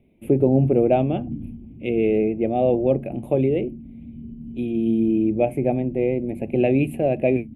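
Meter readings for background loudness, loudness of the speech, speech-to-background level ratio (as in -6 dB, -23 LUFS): -37.5 LUFS, -21.5 LUFS, 16.0 dB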